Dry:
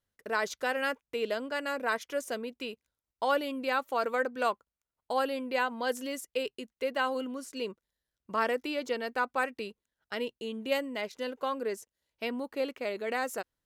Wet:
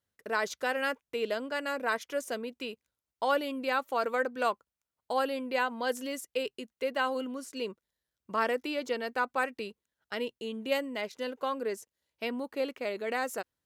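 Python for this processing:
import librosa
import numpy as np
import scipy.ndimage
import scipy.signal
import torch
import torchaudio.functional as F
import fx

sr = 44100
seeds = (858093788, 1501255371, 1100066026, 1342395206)

y = scipy.signal.sosfilt(scipy.signal.butter(2, 60.0, 'highpass', fs=sr, output='sos'), x)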